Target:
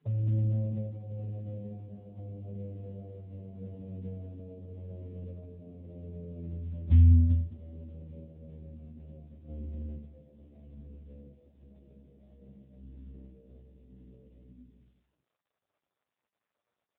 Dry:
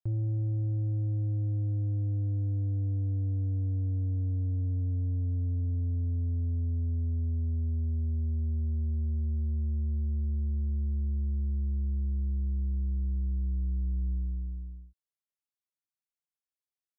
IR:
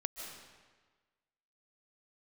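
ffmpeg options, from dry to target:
-filter_complex "[0:a]acrossover=split=100[link_01][link_02];[link_01]alimiter=level_in=13.5dB:limit=-24dB:level=0:latency=1:release=180,volume=-13.5dB[link_03];[link_02]flanger=delay=8.4:depth=7.9:regen=33:speed=0.18:shape=sinusoidal[link_04];[link_03][link_04]amix=inputs=2:normalize=0,asplit=3[link_05][link_06][link_07];[link_05]afade=type=out:start_time=6.89:duration=0.02[link_08];[link_06]asubboost=boost=12:cutoff=200,afade=type=in:start_time=6.89:duration=0.02,afade=type=out:start_time=7.29:duration=0.02[link_09];[link_07]afade=type=in:start_time=7.29:duration=0.02[link_10];[link_08][link_09][link_10]amix=inputs=3:normalize=0,flanger=delay=6.4:depth=3.5:regen=-44:speed=0.96:shape=triangular,lowpass=frequency=620:width_type=q:width=4.9,lowshelf=frequency=130:gain=-2.5,aecho=1:1:93|139|165|211|276:0.211|0.112|0.188|0.355|0.112,asplit=3[link_11][link_12][link_13];[link_11]afade=type=out:start_time=9.48:duration=0.02[link_14];[link_12]acontrast=42,afade=type=in:start_time=9.48:duration=0.02,afade=type=out:start_time=9.96:duration=0.02[link_15];[link_13]afade=type=in:start_time=9.96:duration=0.02[link_16];[link_14][link_15][link_16]amix=inputs=3:normalize=0,afftfilt=real='re*(1-between(b*sr/4096,160,420))':imag='im*(1-between(b*sr/4096,160,420))':win_size=4096:overlap=0.75,volume=8.5dB" -ar 8000 -c:a libopencore_amrnb -b:a 6700

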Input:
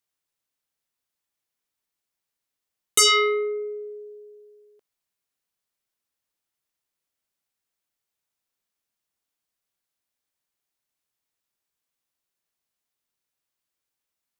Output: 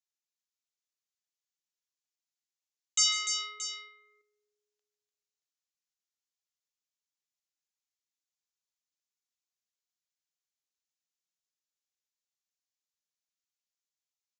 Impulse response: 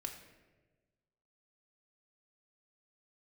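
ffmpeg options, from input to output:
-filter_complex "[0:a]highpass=frequency=650:width=0.5412,highpass=frequency=650:width=1.3066,aderivative,asettb=1/sr,asplit=3[link_01][link_02][link_03];[link_01]atrim=end=3.114[link_04];[link_02]atrim=start=3.11:end=3.59,asetpts=PTS-STARTPTS,afade=type=in:duration=0.004:curve=qsin,afade=type=out:start_time=0.476:duration=0.004:curve=qsin,acompressor=mode=upward:threshold=-36dB:ratio=2.5[link_05];[link_03]atrim=start=3.586[link_06];[link_04][link_05]acrossfade=duration=0.004:curve1=hsin:curve2=qsin[link_07];[link_07][link_06]acrossfade=duration=0.004:curve1=qsin:curve2=hsin,asplit=2[link_08][link_09];[link_09]aecho=0:1:148|296|626:0.266|0.447|0.251[link_10];[link_08][link_10]amix=inputs=2:normalize=0,aresample=16000,aresample=44100,volume=-3.5dB"

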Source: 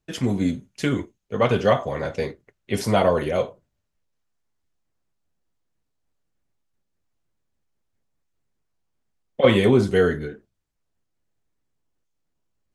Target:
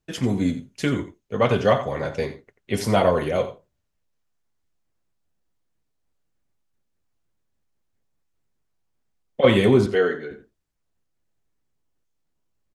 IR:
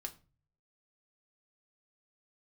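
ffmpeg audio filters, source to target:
-filter_complex "[0:a]asettb=1/sr,asplit=3[link_01][link_02][link_03];[link_01]atrim=end=9.864[link_04];[link_02]atrim=start=9.86:end=10.31,asetpts=PTS-STARTPTS,afade=type=in:duration=0.004:curve=qsin,afade=type=out:start_time=0.446:duration=0.004:curve=qsin,highpass=340,lowpass=4300[link_05];[link_03]atrim=start=10.306[link_06];[link_04][link_05]acrossfade=duration=0.004:curve1=hsin:curve2=qsin[link_07];[link_07][link_06]acrossfade=duration=0.004:curve1=qsin:curve2=hsin,asplit=2[link_08][link_09];[link_09]adelay=87.46,volume=-13dB,highshelf=frequency=4000:gain=-1.97[link_10];[link_08][link_10]amix=inputs=2:normalize=0"

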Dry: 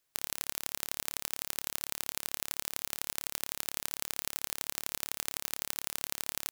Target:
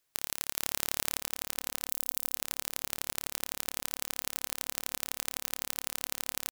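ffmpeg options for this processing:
ffmpeg -i in.wav -filter_complex "[0:a]asettb=1/sr,asplit=3[link_01][link_02][link_03];[link_01]atrim=end=0.574[link_04];[link_02]atrim=start=0.57:end=1.19,asetpts=PTS-STARTPTS,afade=type=in:duration=0.004:curve=qsin,afade=type=out:start_time=0.616:duration=0.004:curve=qsin,acontrast=86[link_05];[link_03]atrim=start=1.186[link_06];[link_04][link_05]acrossfade=duration=0.004:curve1=hsin:curve2=qsin[link_07];[link_07][link_06]acrossfade=duration=0.004:curve1=qsin:curve2=hsin,asettb=1/sr,asplit=3[link_08][link_09][link_10];[link_08]atrim=end=1.884[link_11];[link_09]atrim=start=1.88:end=2.35,asetpts=PTS-STARTPTS,afade=type=in:duration=0.004:curve=qsin,afade=type=out:start_time=0.466:duration=0.004:curve=qsin,aderivative[link_12];[link_10]atrim=start=2.346[link_13];[link_11][link_12]acrossfade=duration=0.004:curve1=hsin:curve2=qsin[link_14];[link_14][link_13]acrossfade=duration=0.004:curve1=qsin:curve2=hsin,asplit=2[link_15][link_16];[link_16]adelay=472,lowpass=frequency=810:poles=1,volume=-20dB,asplit=2[link_17][link_18];[link_18]adelay=472,lowpass=frequency=810:poles=1,volume=0.53,asplit=2[link_19][link_20];[link_20]adelay=472,lowpass=frequency=810:poles=1,volume=0.53,asplit=2[link_21][link_22];[link_22]adelay=472,lowpass=frequency=810:poles=1,volume=0.53[link_23];[link_15][link_17][link_19][link_21][link_23]amix=inputs=5:normalize=0,volume=1dB" out.wav

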